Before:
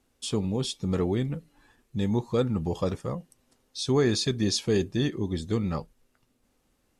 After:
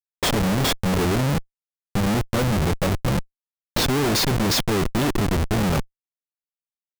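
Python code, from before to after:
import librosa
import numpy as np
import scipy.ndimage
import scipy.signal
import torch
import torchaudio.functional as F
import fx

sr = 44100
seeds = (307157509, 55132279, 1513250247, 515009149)

p1 = fx.notch(x, sr, hz=460.0, q=12.0)
p2 = fx.level_steps(p1, sr, step_db=10)
p3 = p1 + F.gain(torch.from_numpy(p2), 3.0).numpy()
p4 = fx.schmitt(p3, sr, flips_db=-27.5)
y = F.gain(torch.from_numpy(p4), 4.0).numpy()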